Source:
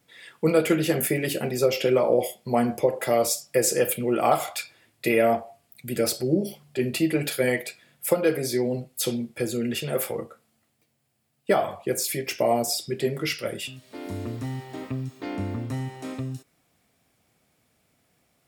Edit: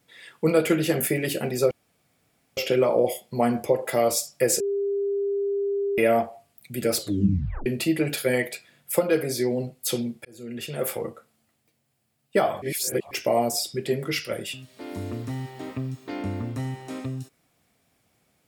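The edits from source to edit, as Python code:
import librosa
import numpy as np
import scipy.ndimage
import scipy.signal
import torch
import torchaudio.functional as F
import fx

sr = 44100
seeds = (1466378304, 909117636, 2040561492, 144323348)

y = fx.edit(x, sr, fx.insert_room_tone(at_s=1.71, length_s=0.86),
    fx.bleep(start_s=3.74, length_s=1.38, hz=400.0, db=-22.5),
    fx.tape_stop(start_s=6.12, length_s=0.68),
    fx.fade_in_span(start_s=9.39, length_s=0.68),
    fx.reverse_span(start_s=11.76, length_s=0.49), tone=tone)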